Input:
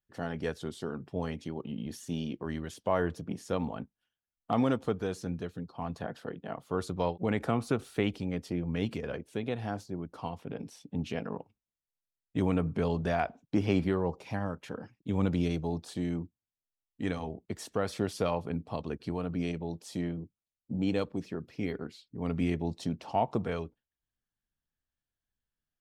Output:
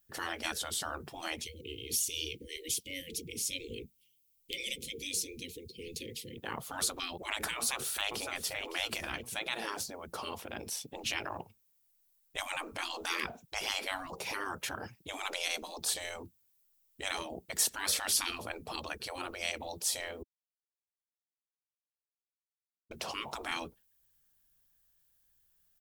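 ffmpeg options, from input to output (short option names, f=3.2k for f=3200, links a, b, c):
-filter_complex "[0:a]asettb=1/sr,asplit=3[a][b][c];[a]atrim=end=1.434[d];[b]atrim=start=1.43:end=6.38,asetpts=PTS-STARTPTS,afade=t=in:d=0.004:c=qsin,afade=t=out:st=4.946:d=0.004:c=qsin,asuperstop=centerf=1000:order=20:qfactor=0.62[e];[c]atrim=start=6.376[f];[d][e]acrossfade=d=0.004:c1=hsin:c2=qsin[g];[g][f]acrossfade=d=0.004:c1=qsin:c2=hsin,asplit=2[h][i];[i]afade=t=in:st=7.55:d=0.01,afade=t=out:st=8.3:d=0.01,aecho=0:1:560|1120|1680:0.251189|0.0753566|0.022607[j];[h][j]amix=inputs=2:normalize=0,asplit=3[k][l][m];[k]atrim=end=20.23,asetpts=PTS-STARTPTS,afade=t=out:st=20.226:d=0.004:c=hsin[n];[l]atrim=start=20.23:end=22.91,asetpts=PTS-STARTPTS,volume=0[o];[m]atrim=start=22.91,asetpts=PTS-STARTPTS,afade=t=in:d=0.004:c=hsin[p];[n][o][p]concat=n=3:v=0:a=1,equalizer=f=280:t=o:w=0.26:g=-13,afftfilt=real='re*lt(hypot(re,im),0.0316)':imag='im*lt(hypot(re,im),0.0316)':win_size=1024:overlap=0.75,aemphasis=mode=production:type=50fm,volume=8.5dB"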